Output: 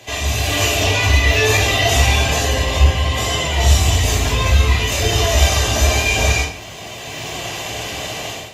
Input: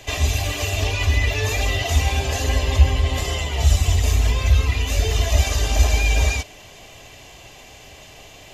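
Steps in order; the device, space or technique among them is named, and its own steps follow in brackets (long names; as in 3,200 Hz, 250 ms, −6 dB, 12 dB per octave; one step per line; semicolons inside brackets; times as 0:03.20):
far-field microphone of a smart speaker (convolution reverb RT60 0.55 s, pre-delay 12 ms, DRR −2 dB; high-pass filter 100 Hz 12 dB per octave; automatic gain control gain up to 15 dB; level −1 dB; Opus 48 kbit/s 48,000 Hz)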